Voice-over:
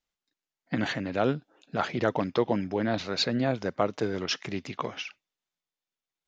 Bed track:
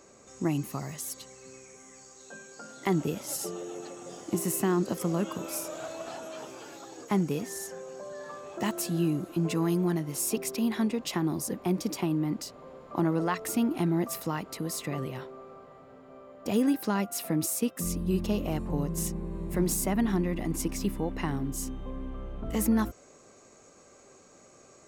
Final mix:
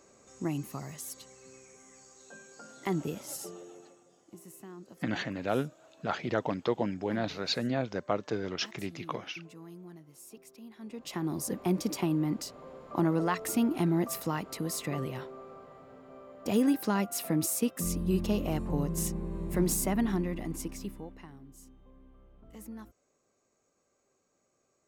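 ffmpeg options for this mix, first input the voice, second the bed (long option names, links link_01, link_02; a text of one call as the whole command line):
ffmpeg -i stem1.wav -i stem2.wav -filter_complex "[0:a]adelay=4300,volume=-4dB[link_01];[1:a]volume=16dB,afade=type=out:start_time=3.19:duration=0.89:silence=0.149624,afade=type=in:start_time=10.8:duration=0.74:silence=0.0944061,afade=type=out:start_time=19.75:duration=1.53:silence=0.112202[link_02];[link_01][link_02]amix=inputs=2:normalize=0" out.wav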